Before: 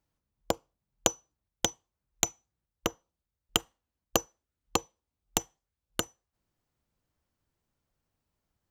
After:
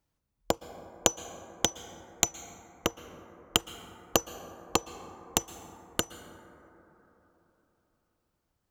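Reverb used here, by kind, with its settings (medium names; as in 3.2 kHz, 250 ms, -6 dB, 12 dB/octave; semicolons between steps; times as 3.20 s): plate-style reverb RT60 3.7 s, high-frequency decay 0.25×, pre-delay 105 ms, DRR 12.5 dB; trim +1.5 dB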